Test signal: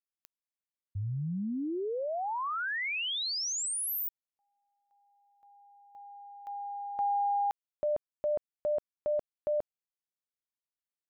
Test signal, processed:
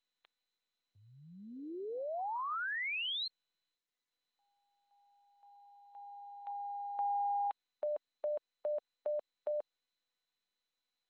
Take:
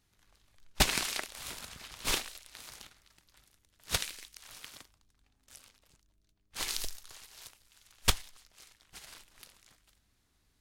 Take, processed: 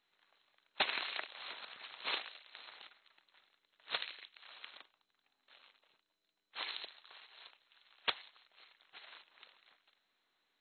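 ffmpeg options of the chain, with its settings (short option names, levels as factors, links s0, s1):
-filter_complex "[0:a]highpass=530,asplit=2[s0][s1];[s1]acompressor=threshold=0.00794:ratio=6:attack=55:release=165:knee=1:detection=peak,volume=0.891[s2];[s0][s2]amix=inputs=2:normalize=0,volume=0.473" -ar 16000 -c:a mp2 -b:a 32k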